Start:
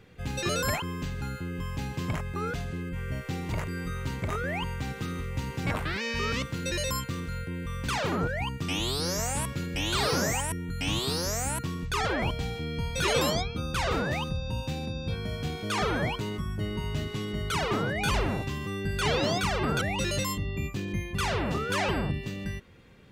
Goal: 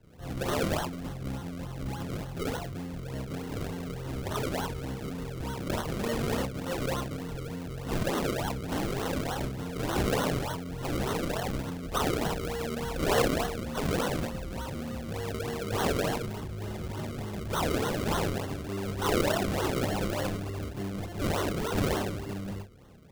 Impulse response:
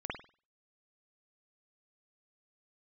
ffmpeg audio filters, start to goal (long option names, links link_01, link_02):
-filter_complex "[1:a]atrim=start_sample=2205,asetrate=70560,aresample=44100[link_01];[0:a][link_01]afir=irnorm=-1:irlink=0,acrossover=split=280[link_02][link_03];[link_02]asoftclip=type=tanh:threshold=-37.5dB[link_04];[link_03]acrusher=samples=35:mix=1:aa=0.000001:lfo=1:lforange=35:lforate=3.4[link_05];[link_04][link_05]amix=inputs=2:normalize=0,volume=2.5dB"